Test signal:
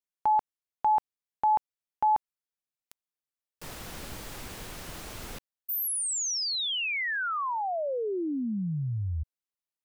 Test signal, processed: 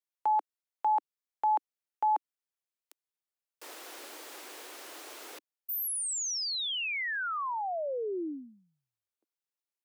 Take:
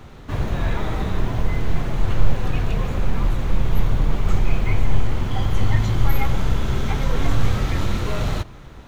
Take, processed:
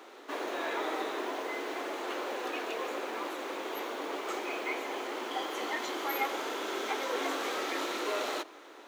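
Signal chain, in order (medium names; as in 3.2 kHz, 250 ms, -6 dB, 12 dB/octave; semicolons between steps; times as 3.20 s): steep high-pass 300 Hz 48 dB/octave; trim -3 dB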